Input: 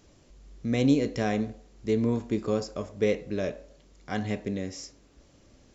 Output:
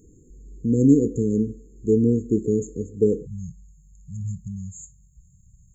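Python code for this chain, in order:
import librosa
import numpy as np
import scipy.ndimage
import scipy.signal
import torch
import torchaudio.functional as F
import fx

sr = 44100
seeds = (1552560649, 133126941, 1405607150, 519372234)

y = fx.brickwall_bandstop(x, sr, low_hz=fx.steps((0.0, 500.0), (3.25, 190.0)), high_hz=6400.0)
y = y * 10.0 ** (7.0 / 20.0)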